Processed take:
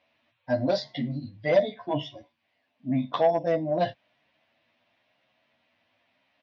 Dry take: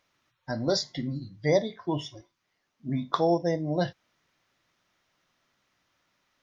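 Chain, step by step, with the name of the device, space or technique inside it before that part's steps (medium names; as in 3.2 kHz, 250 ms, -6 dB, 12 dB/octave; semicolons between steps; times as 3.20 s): barber-pole flanger into a guitar amplifier (endless flanger 10.4 ms +0.9 Hz; saturation -22.5 dBFS, distortion -13 dB; cabinet simulation 92–3900 Hz, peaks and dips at 170 Hz -9 dB, 240 Hz +6 dB, 380 Hz -9 dB, 650 Hz +9 dB, 1.3 kHz -9 dB, 2.6 kHz +5 dB); trim +6 dB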